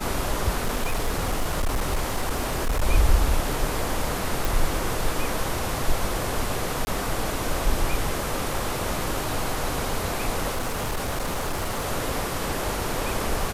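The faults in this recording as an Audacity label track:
0.580000	2.830000	clipping −19.5 dBFS
4.450000	4.450000	click
6.850000	6.870000	drop-out 20 ms
10.540000	11.850000	clipping −23 dBFS

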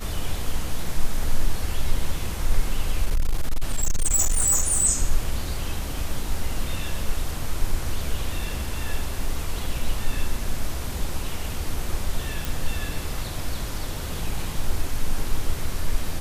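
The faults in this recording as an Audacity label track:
3.050000	4.860000	clipping −16 dBFS
12.450000	12.450000	click

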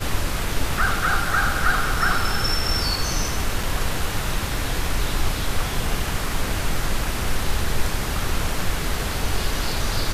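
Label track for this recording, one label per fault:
3.630000	3.630000	drop-out 4.2 ms

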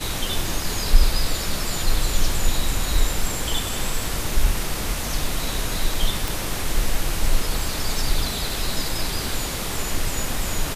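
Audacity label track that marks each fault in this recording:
6.280000	6.280000	click

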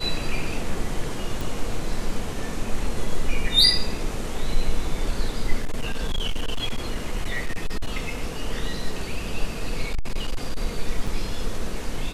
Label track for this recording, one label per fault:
1.410000	1.410000	click
5.600000	8.150000	clipping −19.5 dBFS
9.910000	10.570000	clipping −19 dBFS
11.070000	11.080000	drop-out 5.2 ms

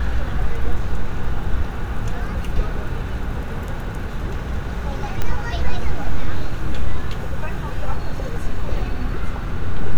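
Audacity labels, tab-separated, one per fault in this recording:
5.220000	5.220000	click −8 dBFS

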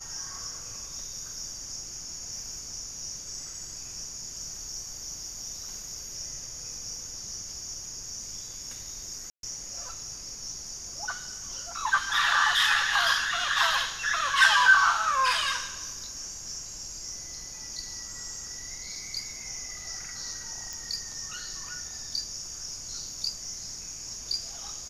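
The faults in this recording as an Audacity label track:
9.300000	9.430000	drop-out 132 ms
20.730000	20.730000	click

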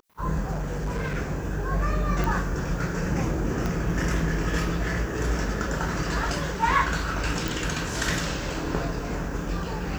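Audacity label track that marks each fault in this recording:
0.510000	1.160000	clipping −25 dBFS
2.240000	2.240000	click
3.660000	3.660000	click −15 dBFS
7.480000	7.480000	click

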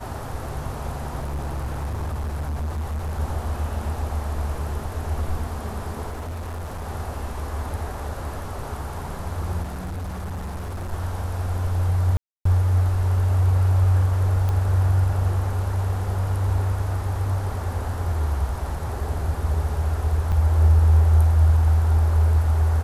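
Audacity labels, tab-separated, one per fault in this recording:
1.190000	3.200000	clipping −24 dBFS
6.110000	6.860000	clipping −28 dBFS
9.620000	10.930000	clipping −27 dBFS
12.170000	12.450000	drop-out 284 ms
14.490000	14.490000	click −15 dBFS
20.320000	20.330000	drop-out 5.2 ms

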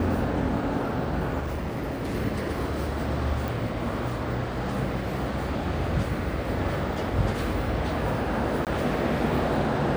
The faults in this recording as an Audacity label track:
1.400000	2.150000	clipping −26 dBFS
3.480000	3.480000	click
8.650000	8.670000	drop-out 18 ms

